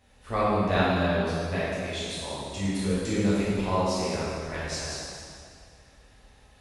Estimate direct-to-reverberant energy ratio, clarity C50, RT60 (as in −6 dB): −10.5 dB, −4.0 dB, 2.1 s